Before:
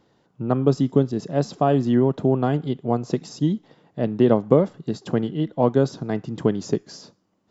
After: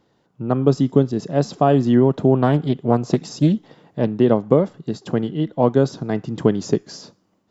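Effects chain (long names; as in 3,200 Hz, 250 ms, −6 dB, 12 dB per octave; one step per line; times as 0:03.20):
automatic gain control
0:02.35–0:04.12: highs frequency-modulated by the lows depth 0.27 ms
level −1 dB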